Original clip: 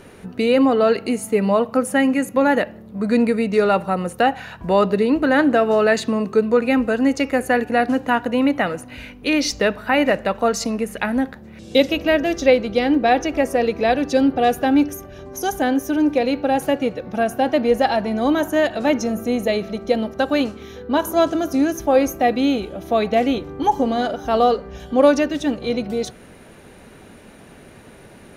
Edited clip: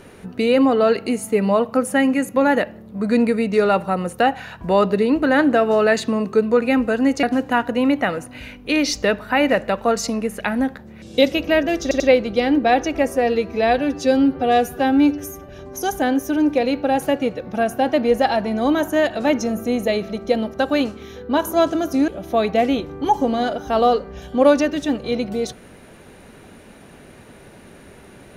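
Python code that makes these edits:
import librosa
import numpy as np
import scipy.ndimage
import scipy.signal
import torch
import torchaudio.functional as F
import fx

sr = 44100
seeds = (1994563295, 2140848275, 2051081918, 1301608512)

y = fx.edit(x, sr, fx.cut(start_s=7.23, length_s=0.57),
    fx.stutter(start_s=12.39, slice_s=0.09, count=3),
    fx.stretch_span(start_s=13.51, length_s=1.58, factor=1.5),
    fx.cut(start_s=21.68, length_s=0.98), tone=tone)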